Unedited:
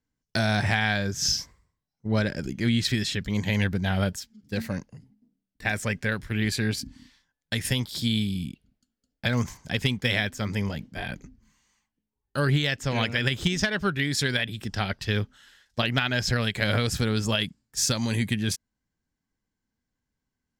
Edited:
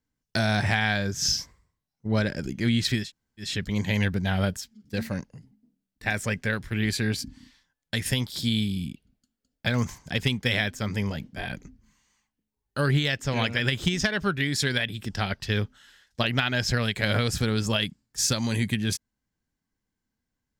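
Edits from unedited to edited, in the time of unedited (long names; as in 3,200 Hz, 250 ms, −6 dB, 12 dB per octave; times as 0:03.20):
0:03.04: splice in room tone 0.41 s, crossfade 0.16 s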